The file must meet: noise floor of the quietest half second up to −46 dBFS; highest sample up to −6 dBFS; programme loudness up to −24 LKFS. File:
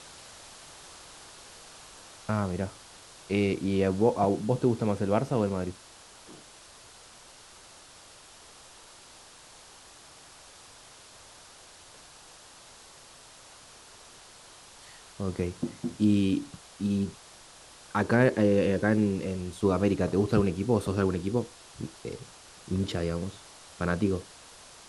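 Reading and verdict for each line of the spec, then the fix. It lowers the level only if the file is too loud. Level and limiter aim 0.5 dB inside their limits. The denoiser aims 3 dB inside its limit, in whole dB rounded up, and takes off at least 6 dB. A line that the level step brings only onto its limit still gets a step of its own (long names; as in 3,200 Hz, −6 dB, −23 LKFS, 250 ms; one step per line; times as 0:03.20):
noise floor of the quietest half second −52 dBFS: in spec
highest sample −9.0 dBFS: in spec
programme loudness −28.0 LKFS: in spec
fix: no processing needed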